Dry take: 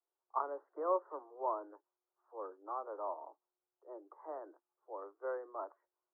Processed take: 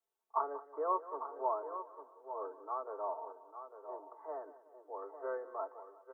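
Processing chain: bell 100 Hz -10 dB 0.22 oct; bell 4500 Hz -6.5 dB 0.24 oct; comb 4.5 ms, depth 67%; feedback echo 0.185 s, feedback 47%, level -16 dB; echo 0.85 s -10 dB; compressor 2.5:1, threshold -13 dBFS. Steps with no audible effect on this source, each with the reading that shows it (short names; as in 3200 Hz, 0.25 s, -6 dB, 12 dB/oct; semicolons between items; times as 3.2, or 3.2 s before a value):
bell 100 Hz: input band starts at 250 Hz; bell 4500 Hz: input band ends at 1500 Hz; compressor, threshold -13 dBFS: input peak -20.5 dBFS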